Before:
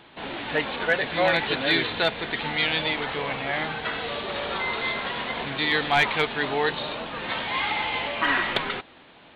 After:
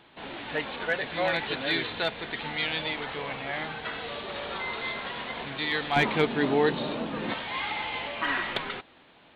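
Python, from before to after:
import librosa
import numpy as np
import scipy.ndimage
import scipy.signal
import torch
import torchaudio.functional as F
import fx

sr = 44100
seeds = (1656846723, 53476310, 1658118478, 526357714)

y = fx.peak_eq(x, sr, hz=240.0, db=13.5, octaves=2.2, at=(5.96, 7.34))
y = y * 10.0 ** (-5.5 / 20.0)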